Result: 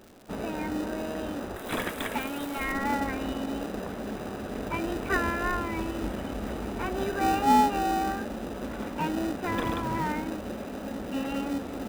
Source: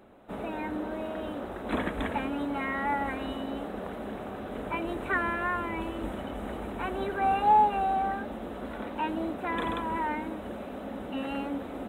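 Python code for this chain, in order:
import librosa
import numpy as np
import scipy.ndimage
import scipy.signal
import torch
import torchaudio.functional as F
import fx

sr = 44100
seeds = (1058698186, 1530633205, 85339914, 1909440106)

p1 = fx.dmg_crackle(x, sr, seeds[0], per_s=150.0, level_db=-40.0)
p2 = fx.riaa(p1, sr, side='recording', at=(1.56, 2.72))
p3 = fx.sample_hold(p2, sr, seeds[1], rate_hz=1100.0, jitter_pct=0)
y = p2 + (p3 * librosa.db_to_amplitude(-5.0))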